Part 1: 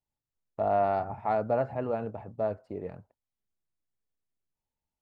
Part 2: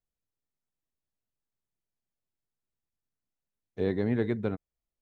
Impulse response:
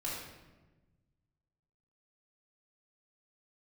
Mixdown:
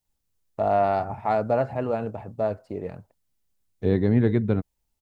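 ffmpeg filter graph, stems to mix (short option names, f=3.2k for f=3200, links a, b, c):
-filter_complex "[0:a]highshelf=f=3k:g=10,volume=3dB[a];[1:a]lowshelf=f=180:g=8,adelay=50,volume=2.5dB[b];[a][b]amix=inputs=2:normalize=0,lowshelf=f=400:g=3"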